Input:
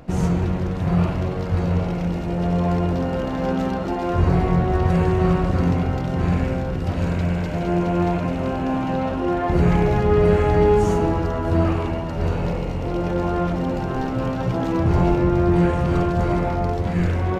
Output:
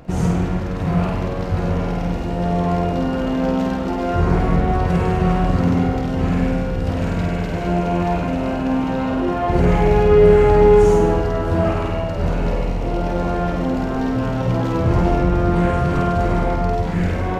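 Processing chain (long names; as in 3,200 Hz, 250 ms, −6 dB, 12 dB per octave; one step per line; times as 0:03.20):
flutter between parallel walls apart 8.6 metres, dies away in 0.68 s
level +1 dB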